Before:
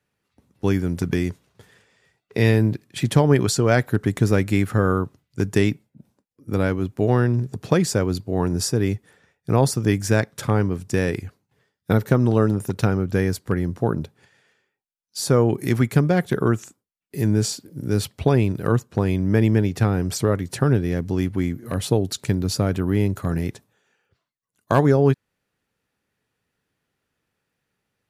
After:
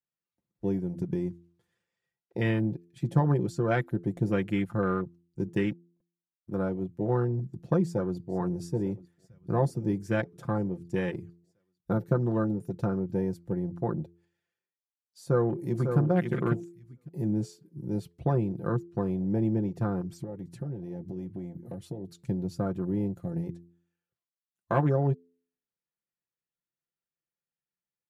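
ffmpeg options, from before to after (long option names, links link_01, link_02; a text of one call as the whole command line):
ffmpeg -i in.wav -filter_complex "[0:a]asettb=1/sr,asplit=3[link_01][link_02][link_03];[link_01]atrim=end=5.484[link_04];[link_02]atrim=start=5.48:end=6.58,asetpts=PTS-STARTPTS,afade=type=in:duration=0.004:curve=qsin,afade=type=out:start_time=1.096:duration=0.004:curve=qsin,aeval=exprs='sgn(val(0))*max(abs(val(0))-0.0106,0)':channel_layout=same[link_05];[link_03]atrim=start=6.576[link_06];[link_04][link_05]acrossfade=duration=0.004:curve1=hsin:curve2=qsin[link_07];[link_07][link_06]acrossfade=duration=0.004:curve1=qsin:curve2=hsin,asplit=2[link_08][link_09];[link_09]afade=type=in:start_time=7.83:duration=0.01,afade=type=out:start_time=8.36:duration=0.01,aecho=0:1:450|900|1350|1800|2250|2700|3150|3600|4050|4500|4950|5400:0.158489|0.126791|0.101433|0.0811465|0.0649172|0.0519338|0.041547|0.0332376|0.0265901|0.0212721|0.0170177|0.0136141[link_10];[link_08][link_10]amix=inputs=2:normalize=0,asplit=2[link_11][link_12];[link_12]afade=type=in:start_time=15.22:duration=0.01,afade=type=out:start_time=15.98:duration=0.01,aecho=0:1:550|1100|1650:0.501187|0.100237|0.0200475[link_13];[link_11][link_13]amix=inputs=2:normalize=0,asettb=1/sr,asplit=3[link_14][link_15][link_16];[link_14]atrim=end=20.014[link_17];[link_15]atrim=start=20.01:end=22.28,asetpts=PTS-STARTPTS,afade=type=in:duration=0.004:curve=qsin,afade=type=out:start_time=2.266:duration=0.004:curve=qsin,acompressor=threshold=-23dB:ratio=6:attack=3.2:release=140:knee=1:detection=peak[link_18];[link_16]atrim=start=22.276[link_19];[link_17][link_18]acrossfade=duration=0.004:curve1=hsin:curve2=qsin[link_20];[link_20][link_19]acrossfade=duration=0.004:curve1=qsin:curve2=hsin,afwtdn=0.0398,aecho=1:1:5.8:0.62,bandreject=frequency=85.95:width_type=h:width=4,bandreject=frequency=171.9:width_type=h:width=4,bandreject=frequency=257.85:width_type=h:width=4,bandreject=frequency=343.8:width_type=h:width=4,bandreject=frequency=429.75:width_type=h:width=4,volume=-9dB" out.wav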